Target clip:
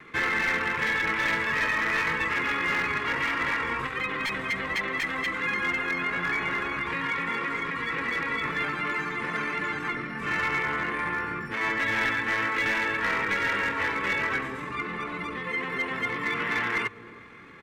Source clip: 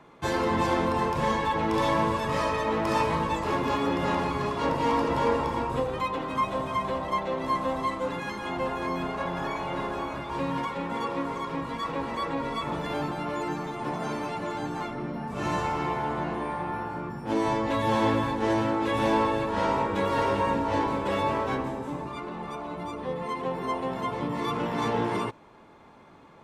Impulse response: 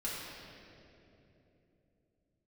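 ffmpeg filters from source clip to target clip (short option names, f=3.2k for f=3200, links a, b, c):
-filter_complex "[0:a]acrossover=split=3100[a][b];[b]acompressor=threshold=-55dB:ratio=4:attack=1:release=60[c];[a][c]amix=inputs=2:normalize=0,superequalizer=8b=0.316:9b=0.316,asplit=2[d][e];[e]adelay=511,lowpass=f=1.1k:p=1,volume=-22dB,asplit=2[f][g];[g]adelay=511,lowpass=f=1.1k:p=1,volume=0.16[h];[d][f][h]amix=inputs=3:normalize=0,atempo=1.5,bandreject=f=50:t=h:w=6,bandreject=f=100:t=h:w=6,acrossover=split=660[i][j];[i]acompressor=threshold=-38dB:ratio=10[k];[k][j]amix=inputs=2:normalize=0,aeval=exprs='0.0562*(abs(mod(val(0)/0.0562+3,4)-2)-1)':c=same,afftfilt=real='re*lt(hypot(re,im),0.112)':imag='im*lt(hypot(re,im),0.112)':win_size=1024:overlap=0.75,equalizer=f=2k:t=o:w=0.89:g=14,aeval=exprs='clip(val(0),-1,0.0562)':c=same,volume=3dB"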